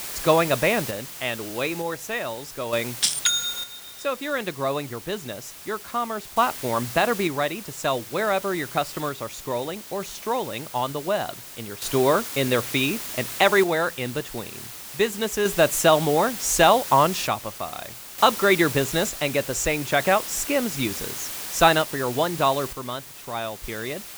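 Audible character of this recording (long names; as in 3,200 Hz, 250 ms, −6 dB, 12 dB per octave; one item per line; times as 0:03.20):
a quantiser's noise floor 6 bits, dither triangular
sample-and-hold tremolo 1.1 Hz, depth 70%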